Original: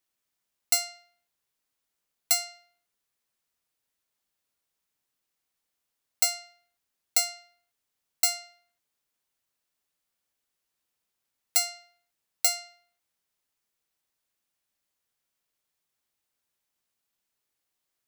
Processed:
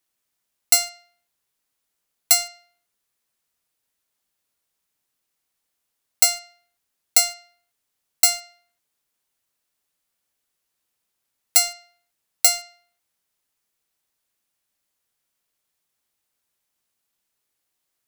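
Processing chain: peaking EQ 11 kHz +2.5 dB 1 oct; in parallel at -6.5 dB: bit crusher 6-bit; on the sum: trim +3.5 dB

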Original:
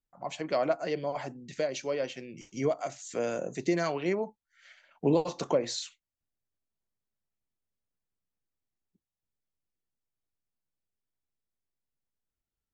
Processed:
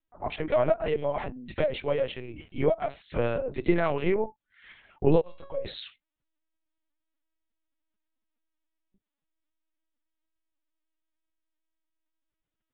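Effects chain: LPC vocoder at 8 kHz pitch kept; 5.21–5.65 s: feedback comb 550 Hz, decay 0.35 s, mix 90%; trim +4.5 dB

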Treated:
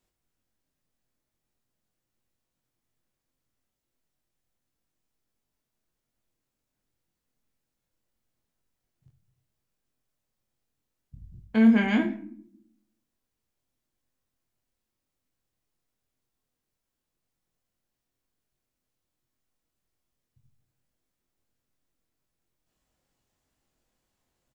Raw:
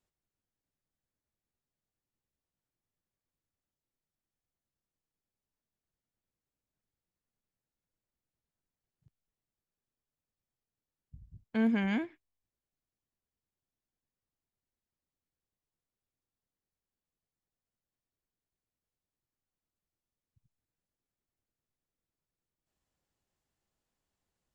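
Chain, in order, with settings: doubling 23 ms -5 dB; on a send: reverberation RT60 0.65 s, pre-delay 3 ms, DRR 8 dB; on the sum: trim +6 dB

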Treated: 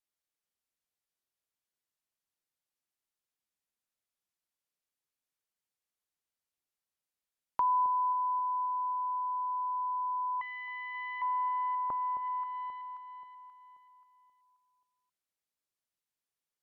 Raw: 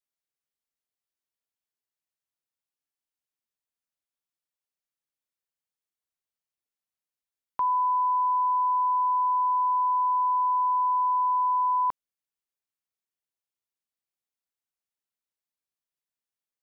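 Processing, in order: 10.41–11.22 s: self-modulated delay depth 0.18 ms; echo whose repeats swap between lows and highs 266 ms, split 1 kHz, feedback 61%, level -10 dB; low-pass that closes with the level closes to 990 Hz, closed at -28.5 dBFS

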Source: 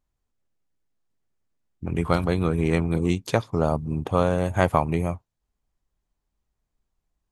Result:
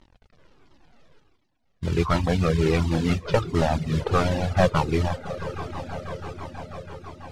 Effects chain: CVSD coder 32 kbps; hum notches 60/120 Hz; on a send: echo with a slow build-up 164 ms, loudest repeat 5, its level -17.5 dB; on the sum: modulation noise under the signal 11 dB; low-pass 4.1 kHz 12 dB/octave; reverse; upward compressor, threshold -42 dBFS; reverse; reverb removal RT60 0.72 s; Shepard-style flanger falling 1.4 Hz; trim +8.5 dB

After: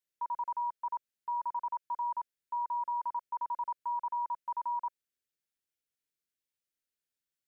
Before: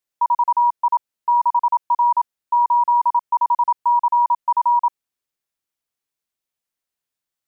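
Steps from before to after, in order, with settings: high-order bell 900 Hz -11 dB 1 oct; trim -6.5 dB

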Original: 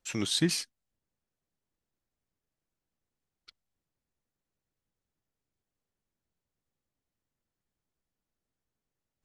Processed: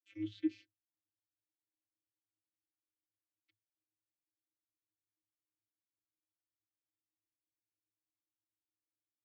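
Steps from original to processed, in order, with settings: vowel filter i; vocoder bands 32, square 105 Hz; trim +4 dB

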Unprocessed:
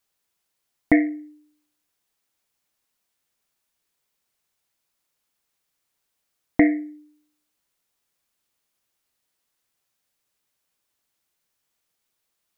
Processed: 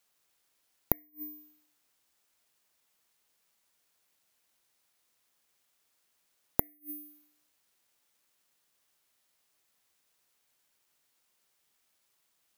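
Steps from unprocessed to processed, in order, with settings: careless resampling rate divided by 3×, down none, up zero stuff; bass shelf 210 Hz -5.5 dB; inverted gate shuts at -13 dBFS, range -40 dB; trim -2 dB

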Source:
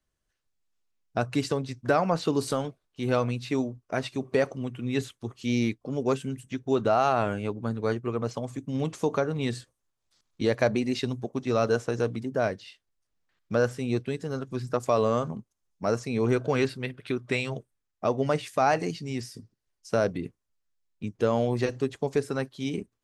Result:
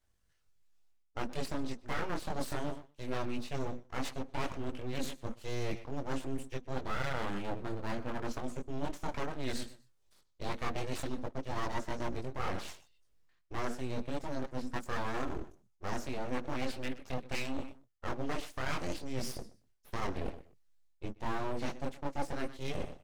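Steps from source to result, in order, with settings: dynamic bell 120 Hz, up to +5 dB, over -41 dBFS, Q 1.1; in parallel at -8.5 dB: crossover distortion -38.5 dBFS; on the sum: feedback delay 124 ms, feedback 18%, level -20 dB; chorus voices 6, 0.18 Hz, delay 22 ms, depth 1.5 ms; reverse; compression 4:1, threshold -39 dBFS, peak gain reduction 19.5 dB; reverse; full-wave rectifier; trim +6 dB

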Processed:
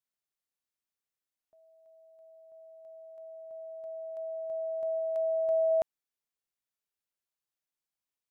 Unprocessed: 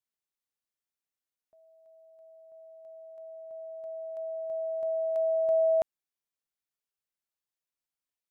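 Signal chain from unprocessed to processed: 4.98–5.71 s: dynamic bell 200 Hz, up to -5 dB, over -44 dBFS, Q 0.77; trim -1.5 dB

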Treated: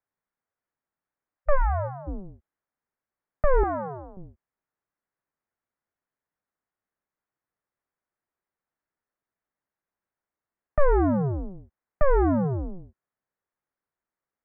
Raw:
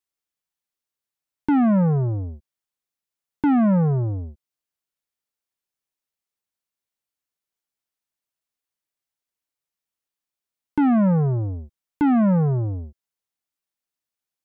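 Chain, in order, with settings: 1.37–2.07 s: spectral selection erased 340–800 Hz; 3.63–4.17 s: resonant low shelf 730 Hz -12.5 dB, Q 1.5; mistuned SSB -280 Hz 310–2200 Hz; trim +5.5 dB

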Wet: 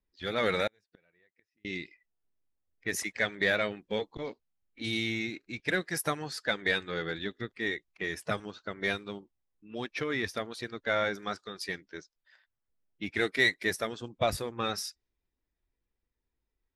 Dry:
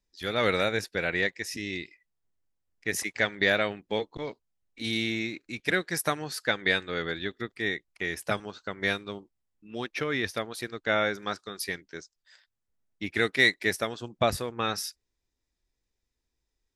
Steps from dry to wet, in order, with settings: coarse spectral quantiser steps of 15 dB; in parallel at -10 dB: saturation -25.5 dBFS, distortion -8 dB; 0.67–1.65 s: on the sum: inverted gate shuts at -25 dBFS, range -38 dB; level-controlled noise filter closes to 2.5 kHz, open at -26 dBFS; trim -4 dB

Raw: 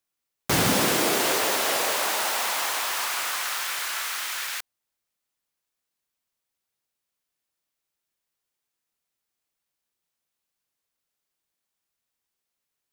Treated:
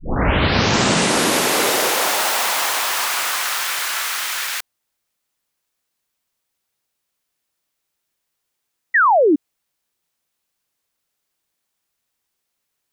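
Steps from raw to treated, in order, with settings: tape start-up on the opening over 2.26 s; painted sound fall, 8.94–9.36 s, 270–2000 Hz -20 dBFS; trim +7 dB

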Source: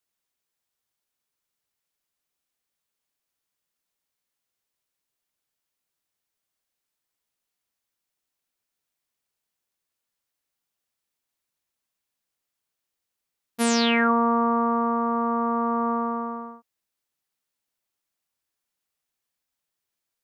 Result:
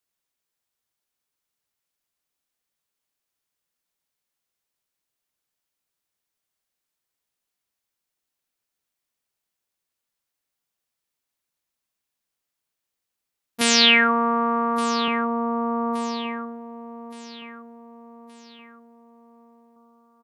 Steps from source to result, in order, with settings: 13.61–15.08 s: frequency weighting D; on a send: feedback delay 1171 ms, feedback 44%, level -14 dB

